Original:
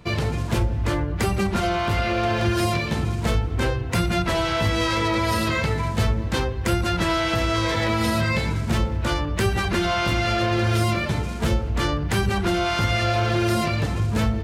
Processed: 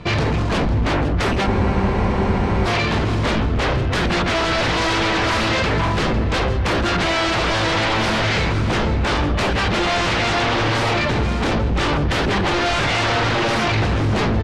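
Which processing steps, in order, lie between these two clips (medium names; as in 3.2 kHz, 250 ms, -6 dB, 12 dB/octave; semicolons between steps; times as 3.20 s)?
sine folder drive 13 dB, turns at -9.5 dBFS; low-pass 4.7 kHz 12 dB/octave; on a send: delay 504 ms -13 dB; on the sum: spectral freeze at 1.49 s, 1.16 s; trim -6 dB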